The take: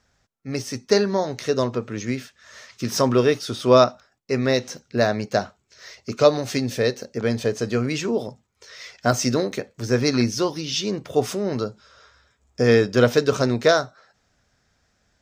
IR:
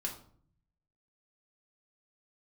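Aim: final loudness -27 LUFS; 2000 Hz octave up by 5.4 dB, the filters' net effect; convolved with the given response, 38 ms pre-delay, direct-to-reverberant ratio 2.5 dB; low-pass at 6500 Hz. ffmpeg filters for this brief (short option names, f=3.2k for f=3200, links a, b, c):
-filter_complex "[0:a]lowpass=6.5k,equalizer=f=2k:t=o:g=7,asplit=2[a][b];[1:a]atrim=start_sample=2205,adelay=38[c];[b][c]afir=irnorm=-1:irlink=0,volume=-3.5dB[d];[a][d]amix=inputs=2:normalize=0,volume=-7.5dB"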